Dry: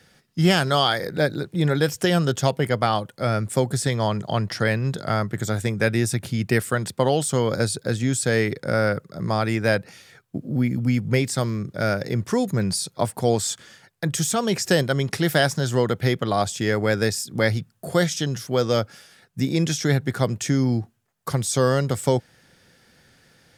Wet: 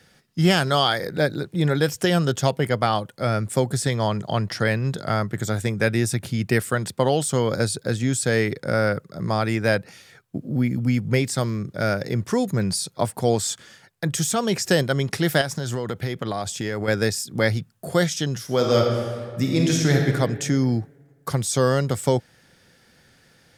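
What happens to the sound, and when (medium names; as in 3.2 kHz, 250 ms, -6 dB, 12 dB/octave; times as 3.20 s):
15.41–16.88 s: compression, threshold -22 dBFS
18.43–20.04 s: reverb throw, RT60 1.8 s, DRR 0.5 dB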